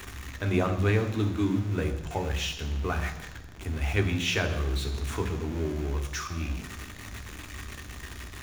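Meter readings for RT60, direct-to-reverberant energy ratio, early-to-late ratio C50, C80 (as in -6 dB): 1.0 s, 5.5 dB, 10.0 dB, 12.0 dB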